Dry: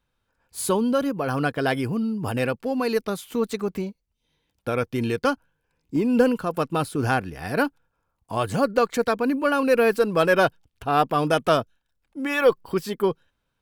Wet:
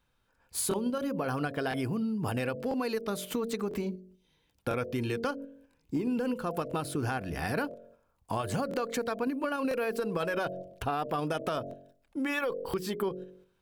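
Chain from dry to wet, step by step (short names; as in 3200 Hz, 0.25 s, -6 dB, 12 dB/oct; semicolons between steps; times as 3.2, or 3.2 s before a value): de-hum 46.1 Hz, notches 15; in parallel at 0 dB: level quantiser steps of 22 dB; on the sum: limiter -13 dBFS, peak gain reduction 10 dB; compressor 5:1, threshold -29 dBFS, peak gain reduction 11.5 dB; crackling interface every 1.00 s, samples 1024, repeat, from 0.69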